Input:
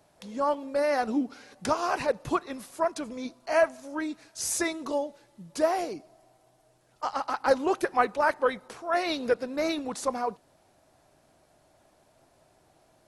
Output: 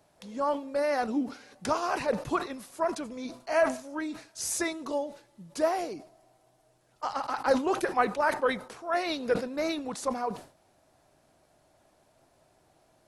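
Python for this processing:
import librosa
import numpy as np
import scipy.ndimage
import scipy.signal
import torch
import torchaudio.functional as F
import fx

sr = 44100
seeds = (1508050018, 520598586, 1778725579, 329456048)

y = fx.sustainer(x, sr, db_per_s=140.0)
y = y * librosa.db_to_amplitude(-2.0)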